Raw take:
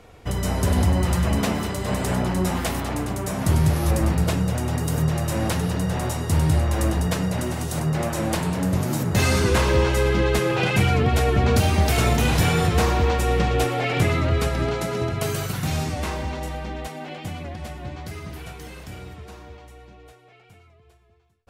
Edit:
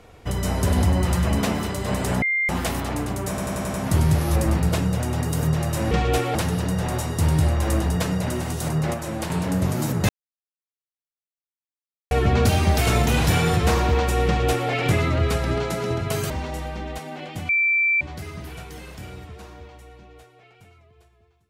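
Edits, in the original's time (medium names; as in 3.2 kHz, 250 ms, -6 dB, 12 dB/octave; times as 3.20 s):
2.22–2.49 s: bleep 2.1 kHz -19 dBFS
3.29 s: stutter 0.09 s, 6 plays
8.05–8.41 s: gain -4.5 dB
9.20–11.22 s: mute
13.37–13.81 s: copy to 5.46 s
15.41–16.19 s: delete
17.38–17.90 s: bleep 2.34 kHz -16.5 dBFS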